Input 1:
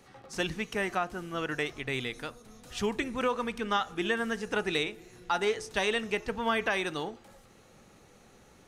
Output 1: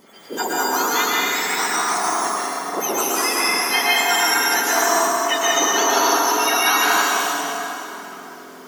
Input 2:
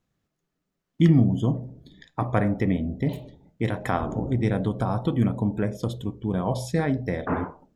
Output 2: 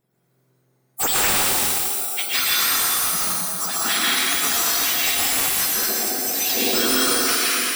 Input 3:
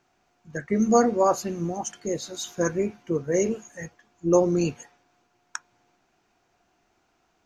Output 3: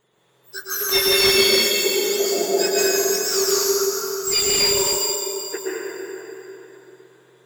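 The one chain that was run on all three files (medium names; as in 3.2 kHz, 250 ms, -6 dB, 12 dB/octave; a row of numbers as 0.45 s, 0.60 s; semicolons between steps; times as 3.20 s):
spectrum inverted on a logarithmic axis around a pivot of 1.6 kHz; hum notches 50/100/150/200/250/300 Hz; plate-style reverb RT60 3.7 s, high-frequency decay 0.7×, pre-delay 105 ms, DRR -7.5 dB; slew-rate limiter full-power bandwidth 510 Hz; normalise loudness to -18 LUFS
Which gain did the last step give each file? +9.0 dB, +7.0 dB, +4.5 dB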